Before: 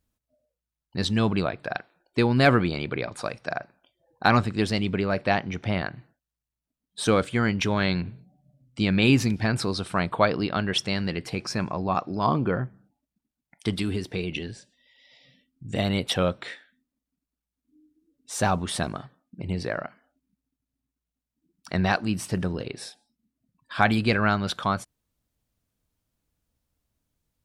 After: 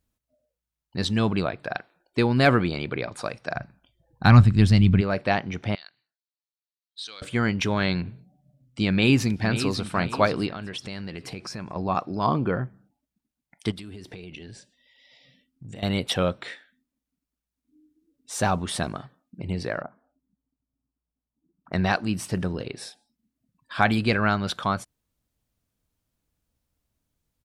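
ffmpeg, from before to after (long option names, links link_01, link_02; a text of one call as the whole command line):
ffmpeg -i in.wav -filter_complex "[0:a]asplit=3[link_01][link_02][link_03];[link_01]afade=type=out:start_time=3.55:duration=0.02[link_04];[link_02]asubboost=boost=10:cutoff=150,afade=type=in:start_time=3.55:duration=0.02,afade=type=out:start_time=5:duration=0.02[link_05];[link_03]afade=type=in:start_time=5:duration=0.02[link_06];[link_04][link_05][link_06]amix=inputs=3:normalize=0,asettb=1/sr,asplit=3[link_07][link_08][link_09];[link_07]atrim=end=5.754[link_10];[link_08]atrim=start=5.75:end=7.22,asetpts=PTS-STARTPTS,afade=type=in:duration=0.004:curve=qsin,afade=type=out:start_time=1.466:duration=0.004:curve=qsin,bandpass=frequency=4200:width_type=q:width=3.6[link_11];[link_09]atrim=start=7.216[link_12];[link_10][link_11]acrossfade=duration=0.004:curve1=hsin:curve2=qsin[link_13];[link_13][link_12]acrossfade=duration=0.004:curve1=qsin:curve2=hsin,asplit=2[link_14][link_15];[link_15]afade=type=in:start_time=8.9:duration=0.01,afade=type=out:start_time=9.93:duration=0.01,aecho=0:1:530|1060|1590|2120:0.298538|0.104488|0.0365709|0.0127998[link_16];[link_14][link_16]amix=inputs=2:normalize=0,asettb=1/sr,asplit=3[link_17][link_18][link_19];[link_17]atrim=end=10.494[link_20];[link_18]atrim=start=10.49:end=11.76,asetpts=PTS-STARTPTS,afade=type=in:duration=0.004:curve=qsin,afade=type=out:start_time=1.266:duration=0.004:curve=qsin,acompressor=threshold=-32dB:ratio=4:attack=3.2:release=140:knee=1:detection=peak[link_21];[link_19]atrim=start=11.756[link_22];[link_20][link_21]acrossfade=duration=0.004:curve1=hsin:curve2=qsin[link_23];[link_23][link_22]acrossfade=duration=0.004:curve1=qsin:curve2=hsin,asettb=1/sr,asplit=3[link_24][link_25][link_26];[link_24]atrim=end=13.714[link_27];[link_25]atrim=start=13.71:end=15.83,asetpts=PTS-STARTPTS,afade=type=in:duration=0.004:curve=qsin,afade=type=out:start_time=2.116:duration=0.004:curve=qsin,acompressor=threshold=-36dB:ratio=10:attack=3.2:release=140:knee=1:detection=peak[link_28];[link_26]atrim=start=15.826[link_29];[link_27][link_28]acrossfade=duration=0.004:curve1=hsin:curve2=qsin[link_30];[link_30][link_29]acrossfade=duration=0.004:curve1=qsin:curve2=hsin,asettb=1/sr,asplit=3[link_31][link_32][link_33];[link_31]atrim=end=19.824[link_34];[link_32]atrim=start=19.82:end=21.73,asetpts=PTS-STARTPTS,afade=type=in:duration=0.004:curve=qsin,afade=type=out:start_time=1.906:duration=0.004:curve=qsin,lowpass=frequency=1200:width=0.5412,lowpass=frequency=1200:width=1.3066[link_35];[link_33]atrim=start=21.726[link_36];[link_34][link_35]acrossfade=duration=0.004:curve1=hsin:curve2=qsin[link_37];[link_37][link_36]acrossfade=duration=0.004:curve1=qsin:curve2=hsin" out.wav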